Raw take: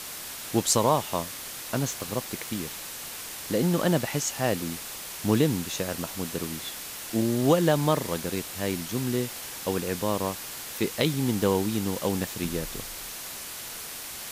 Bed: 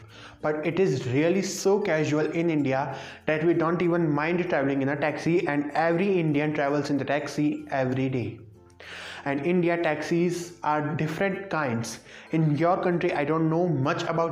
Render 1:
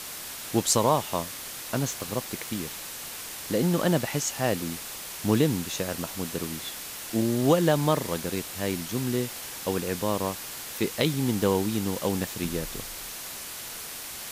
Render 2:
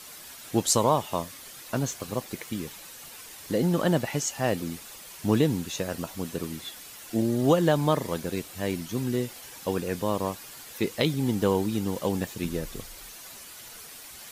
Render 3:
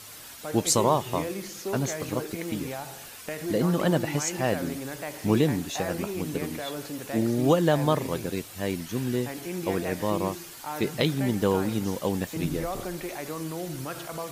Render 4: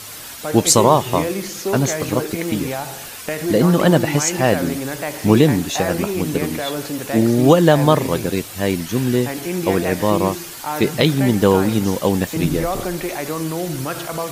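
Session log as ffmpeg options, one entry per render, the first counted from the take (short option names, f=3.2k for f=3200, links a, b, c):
-af anull
-af "afftdn=nr=9:nf=-39"
-filter_complex "[1:a]volume=-10.5dB[a];[0:a][a]amix=inputs=2:normalize=0"
-af "volume=10dB,alimiter=limit=-1dB:level=0:latency=1"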